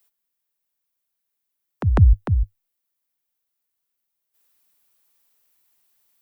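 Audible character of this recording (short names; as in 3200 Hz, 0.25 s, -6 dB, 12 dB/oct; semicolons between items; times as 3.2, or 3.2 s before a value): noise floor -79 dBFS; spectral tilt -9.0 dB/oct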